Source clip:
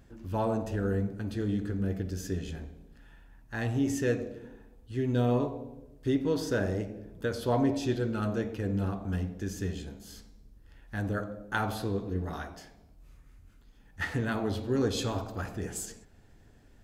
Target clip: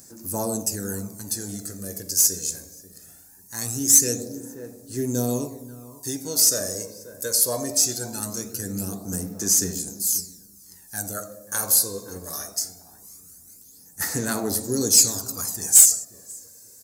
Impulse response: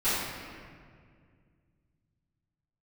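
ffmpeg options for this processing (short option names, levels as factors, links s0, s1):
-filter_complex "[0:a]highpass=150,asplit=2[s0][s1];[s1]adelay=536,lowpass=f=990:p=1,volume=0.2,asplit=2[s2][s3];[s3]adelay=536,lowpass=f=990:p=1,volume=0.27,asplit=2[s4][s5];[s5]adelay=536,lowpass=f=990:p=1,volume=0.27[s6];[s0][s2][s4][s6]amix=inputs=4:normalize=0,aexciter=amount=15.4:drive=9.8:freq=5100,asoftclip=type=tanh:threshold=0.596,aphaser=in_gain=1:out_gain=1:delay=1.9:decay=0.54:speed=0.21:type=sinusoidal,volume=0.794"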